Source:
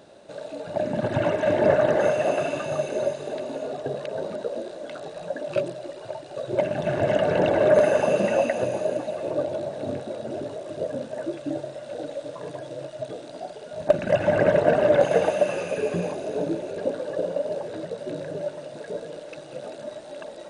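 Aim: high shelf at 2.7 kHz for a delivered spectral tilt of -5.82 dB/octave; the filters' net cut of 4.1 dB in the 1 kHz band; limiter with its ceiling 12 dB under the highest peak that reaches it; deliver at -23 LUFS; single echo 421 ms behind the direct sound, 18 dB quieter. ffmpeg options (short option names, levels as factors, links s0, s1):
-af "equalizer=f=1000:t=o:g=-6,highshelf=f=2700:g=-4,alimiter=limit=0.119:level=0:latency=1,aecho=1:1:421:0.126,volume=2.37"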